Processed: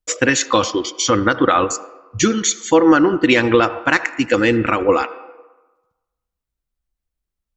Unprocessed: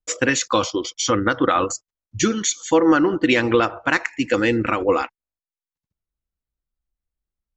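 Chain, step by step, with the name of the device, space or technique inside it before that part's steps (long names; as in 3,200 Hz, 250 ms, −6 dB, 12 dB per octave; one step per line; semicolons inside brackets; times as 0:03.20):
filtered reverb send (on a send: high-pass filter 320 Hz 12 dB per octave + low-pass filter 3,200 Hz 12 dB per octave + convolution reverb RT60 1.2 s, pre-delay 67 ms, DRR 15.5 dB)
on the sum: level +3.5 dB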